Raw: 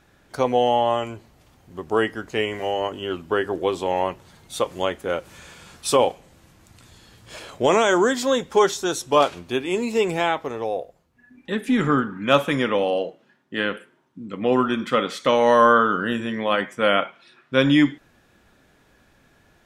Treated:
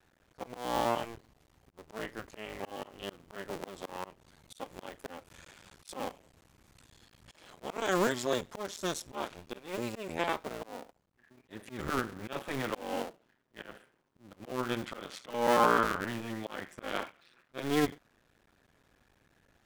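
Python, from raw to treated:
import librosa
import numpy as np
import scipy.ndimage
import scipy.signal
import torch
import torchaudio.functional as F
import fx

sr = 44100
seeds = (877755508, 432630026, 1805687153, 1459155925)

y = fx.cycle_switch(x, sr, every=2, mode='muted')
y = fx.auto_swell(y, sr, attack_ms=253.0)
y = y * librosa.db_to_amplitude(-7.5)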